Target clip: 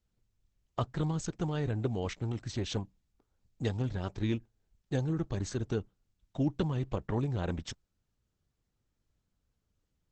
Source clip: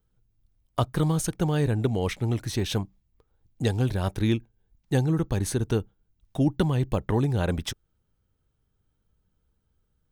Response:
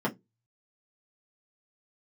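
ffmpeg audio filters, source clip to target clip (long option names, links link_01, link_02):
-af "volume=-7dB" -ar 48000 -c:a libopus -b:a 10k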